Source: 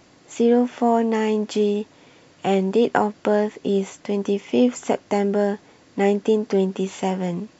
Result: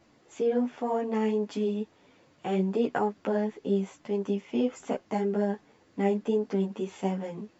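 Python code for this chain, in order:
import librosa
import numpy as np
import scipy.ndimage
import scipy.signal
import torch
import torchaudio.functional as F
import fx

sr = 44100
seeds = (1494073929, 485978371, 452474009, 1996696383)

y = fx.high_shelf(x, sr, hz=3500.0, db=-6.5)
y = fx.ensemble(y, sr)
y = y * 10.0 ** (-5.5 / 20.0)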